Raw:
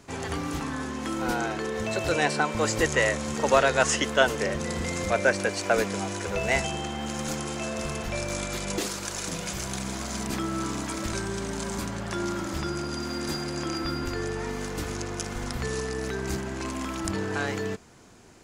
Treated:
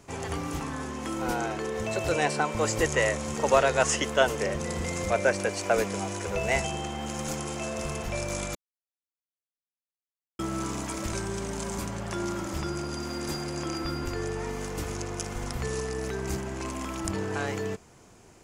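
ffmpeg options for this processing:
-filter_complex "[0:a]asplit=3[a][b][c];[a]atrim=end=8.55,asetpts=PTS-STARTPTS,afade=t=out:st=8.546:d=0.004:c=hsin[d];[b]atrim=start=8.55:end=10.39,asetpts=PTS-STARTPTS,volume=0[e];[c]atrim=start=10.39,asetpts=PTS-STARTPTS,afade=t=in:d=0.004:c=hsin[f];[d][e][f]concat=n=3:v=0:a=1,equalizer=f=250:t=o:w=0.67:g=-4,equalizer=f=1.6k:t=o:w=0.67:g=-4,equalizer=f=4k:t=o:w=0.67:g=-5"

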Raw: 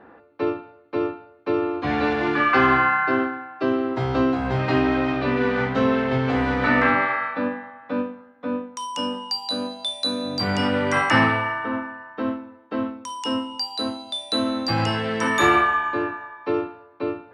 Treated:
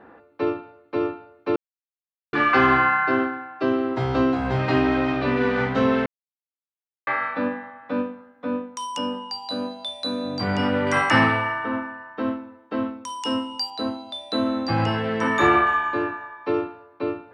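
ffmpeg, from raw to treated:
-filter_complex "[0:a]asettb=1/sr,asplit=3[a][b][c];[a]atrim=end=8.984[d];[b]atrim=start=8.98:end=10.87,asetpts=PTS-STARTPTS,afade=t=in:d=0.004:c=qsin,afade=t=out:st=1.886:d=0.004:c=qsin,lowpass=f=2.6k:p=1[e];[c]atrim=start=10.866[f];[d][e]acrossfade=d=0.004:c1=hsin:c2=qsin[g];[g][f]acrossfade=d=0.004:c1=qsin:c2=hsin,asettb=1/sr,asplit=3[h][i][j];[h]atrim=end=13.704[k];[i]atrim=start=13.7:end=15.67,asetpts=PTS-STARTPTS,afade=t=in:d=0.004:c=qsin,afade=t=out:st=1.966:d=0.004:c=qsin,aemphasis=mode=reproduction:type=75fm[l];[j]atrim=start=15.666[m];[k][l]acrossfade=d=0.004:c1=hsin:c2=qsin[n];[n][m]acrossfade=d=0.004:c1=qsin:c2=hsin,asplit=5[o][p][q][r][s];[o]atrim=end=1.56,asetpts=PTS-STARTPTS,afade=t=out:st=1.556:d=0.004:c=hsin[t];[p]atrim=start=1.56:end=2.33,asetpts=PTS-STARTPTS,volume=0[u];[q]atrim=start=2.33:end=6.06,asetpts=PTS-STARTPTS,afade=t=in:d=0.004:c=hsin,afade=t=out:st=3.726:d=0.004:c=hsin[v];[r]atrim=start=6.06:end=7.07,asetpts=PTS-STARTPTS,volume=0[w];[s]atrim=start=7.07,asetpts=PTS-STARTPTS,afade=t=in:d=0.004:c=hsin[x];[t][u][v][w][x]concat=n=5:v=0:a=1"

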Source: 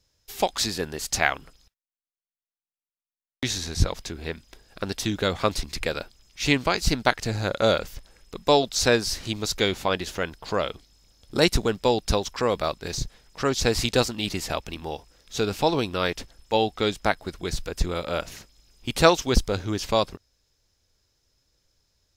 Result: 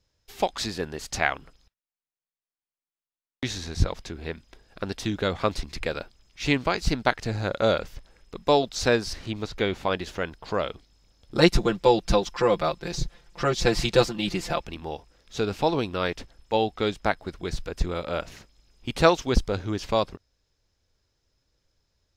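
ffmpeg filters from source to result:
-filter_complex "[0:a]asettb=1/sr,asplit=3[a][b][c];[a]atrim=end=9.134[d];[b]atrim=start=9.13:end=9.83,asetpts=PTS-STARTPTS,afade=t=in:d=0.004:c=qsin,afade=t=out:st=0.696:d=0.004:c=qsin,acrossover=split=3500[e][f];[f]acompressor=threshold=-41dB:ratio=4:attack=1:release=60[g];[e][g]amix=inputs=2:normalize=0[h];[c]atrim=start=9.826[i];[d][h]acrossfade=d=0.004:c1=hsin:c2=qsin[j];[j][i]acrossfade=d=0.004:c1=qsin:c2=hsin,asettb=1/sr,asplit=3[k][l][m];[k]atrim=end=11.374[n];[l]atrim=start=11.37:end=14.66,asetpts=PTS-STARTPTS,afade=t=in:d=0.004:c=qsin,afade=t=out:st=3.286:d=0.004:c=qsin,aecho=1:1:5.8:0.96,atrim=end_sample=145089[o];[m]atrim=start=14.656[p];[n][o]acrossfade=d=0.004:c1=hsin:c2=qsin[q];[q][p]acrossfade=d=0.004:c1=qsin:c2=hsin,lowpass=f=3.3k:p=1,volume=-1dB"

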